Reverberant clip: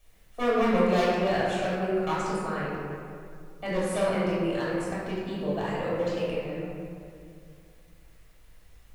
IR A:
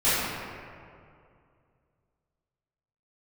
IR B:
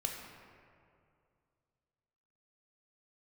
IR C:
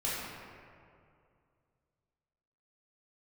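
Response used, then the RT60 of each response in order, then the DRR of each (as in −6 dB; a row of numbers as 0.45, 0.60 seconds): C; 2.4, 2.4, 2.4 seconds; −16.5, 0.5, −9.0 decibels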